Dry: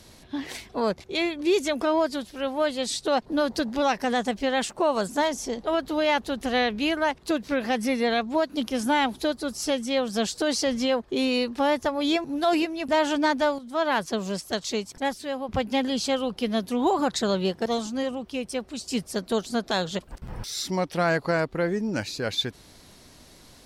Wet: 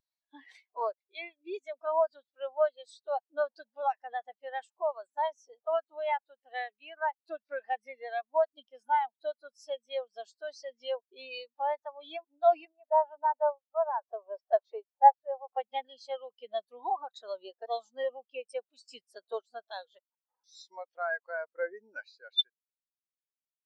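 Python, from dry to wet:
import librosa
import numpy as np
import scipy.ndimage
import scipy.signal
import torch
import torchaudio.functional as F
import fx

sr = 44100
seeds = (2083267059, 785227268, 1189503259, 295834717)

y = fx.bandpass_q(x, sr, hz=720.0, q=0.89, at=(12.71, 15.56), fade=0.02)
y = scipy.signal.sosfilt(scipy.signal.butter(2, 790.0, 'highpass', fs=sr, output='sos'), y)
y = fx.rider(y, sr, range_db=10, speed_s=0.5)
y = fx.spectral_expand(y, sr, expansion=2.5)
y = y * librosa.db_to_amplitude(3.5)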